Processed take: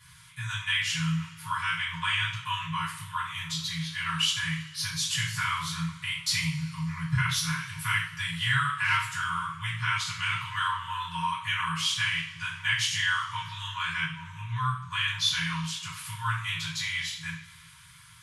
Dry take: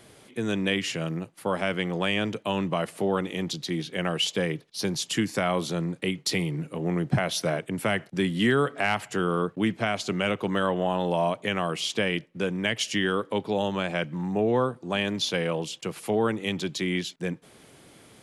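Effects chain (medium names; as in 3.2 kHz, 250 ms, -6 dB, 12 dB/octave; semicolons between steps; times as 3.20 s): two-slope reverb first 0.47 s, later 2.3 s, from -20 dB, DRR -9.5 dB; FFT band-reject 170–910 Hz; trim -7.5 dB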